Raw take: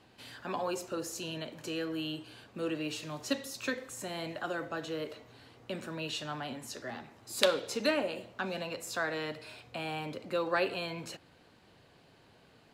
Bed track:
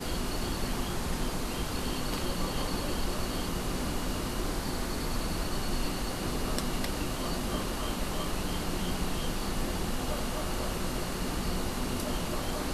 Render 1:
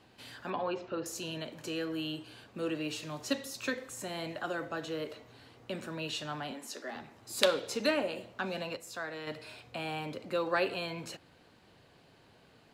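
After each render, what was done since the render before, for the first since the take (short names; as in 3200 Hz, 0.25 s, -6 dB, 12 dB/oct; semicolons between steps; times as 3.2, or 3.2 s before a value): 0.5–1.06 LPF 3700 Hz 24 dB/oct; 6.51–6.96 HPF 230 Hz 24 dB/oct; 8.77–9.27 gain -6 dB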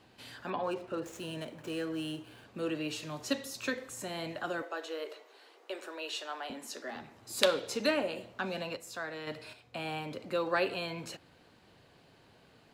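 0.63–2.45 median filter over 9 samples; 4.62–6.5 Chebyshev high-pass 360 Hz, order 4; 9.53–10.11 upward expander, over -50 dBFS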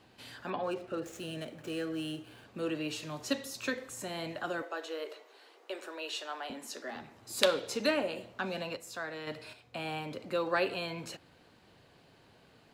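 0.55–2.27 notch 970 Hz, Q 5.8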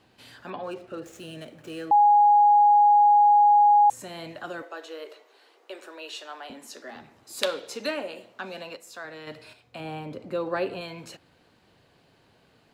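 1.91–3.9 bleep 827 Hz -13.5 dBFS; 7.23–9.05 Bessel high-pass 250 Hz; 9.8–10.81 tilt shelf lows +5 dB, about 1100 Hz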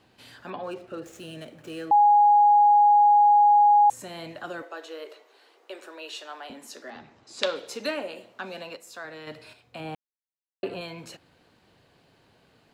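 6.9–7.56 LPF 6800 Hz 24 dB/oct; 9.95–10.63 mute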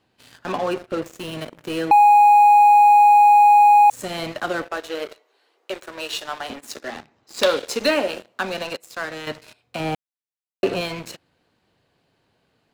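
compressor 4:1, threshold -20 dBFS, peak gain reduction 4.5 dB; sample leveller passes 3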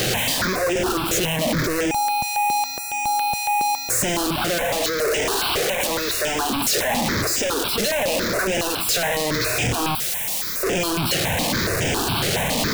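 infinite clipping; step phaser 7.2 Hz 260–4200 Hz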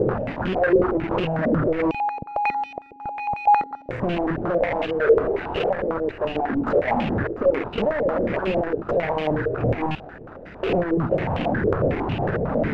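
median filter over 41 samples; stepped low-pass 11 Hz 450–2800 Hz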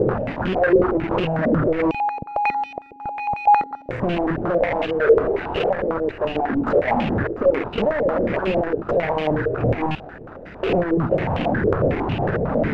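gain +2 dB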